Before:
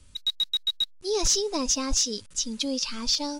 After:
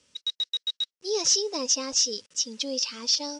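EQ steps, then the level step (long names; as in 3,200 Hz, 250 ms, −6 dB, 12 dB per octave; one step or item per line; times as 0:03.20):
loudspeaker in its box 230–8,500 Hz, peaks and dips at 490 Hz +8 dB, 1,900 Hz +3 dB, 2,900 Hz +5 dB, 5,500 Hz +9 dB
−4.5 dB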